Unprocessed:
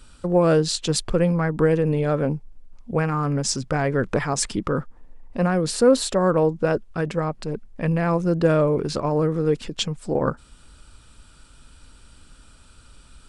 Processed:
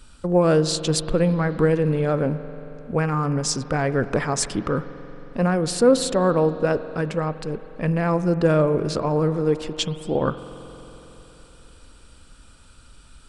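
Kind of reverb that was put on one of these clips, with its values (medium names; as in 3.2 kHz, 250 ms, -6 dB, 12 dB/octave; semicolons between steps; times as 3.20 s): spring tank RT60 3.8 s, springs 45 ms, chirp 70 ms, DRR 12.5 dB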